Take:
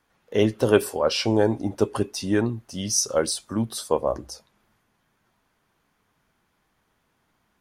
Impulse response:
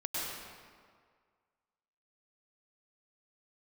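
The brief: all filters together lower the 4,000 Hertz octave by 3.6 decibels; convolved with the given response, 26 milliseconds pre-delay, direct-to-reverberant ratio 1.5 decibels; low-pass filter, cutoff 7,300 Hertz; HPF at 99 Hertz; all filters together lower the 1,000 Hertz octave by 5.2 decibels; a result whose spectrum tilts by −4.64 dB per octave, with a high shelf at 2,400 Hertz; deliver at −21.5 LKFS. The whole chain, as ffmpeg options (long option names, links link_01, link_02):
-filter_complex "[0:a]highpass=99,lowpass=7300,equalizer=frequency=1000:width_type=o:gain=-7,highshelf=frequency=2400:gain=3,equalizer=frequency=4000:width_type=o:gain=-7.5,asplit=2[link_01][link_02];[1:a]atrim=start_sample=2205,adelay=26[link_03];[link_02][link_03]afir=irnorm=-1:irlink=0,volume=-6.5dB[link_04];[link_01][link_04]amix=inputs=2:normalize=0,volume=2dB"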